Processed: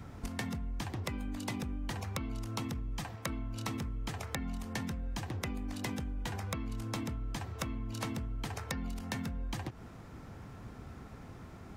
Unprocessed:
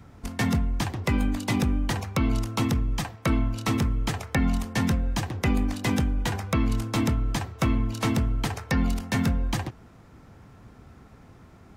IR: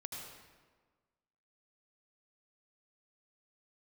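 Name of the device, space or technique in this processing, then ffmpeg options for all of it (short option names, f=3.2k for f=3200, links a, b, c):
serial compression, peaks first: -af "acompressor=threshold=-31dB:ratio=6,acompressor=threshold=-38dB:ratio=2.5,volume=1.5dB"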